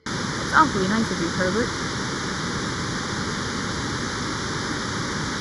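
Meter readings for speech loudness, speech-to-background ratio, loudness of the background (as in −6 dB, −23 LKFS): −23.0 LKFS, 3.5 dB, −26.5 LKFS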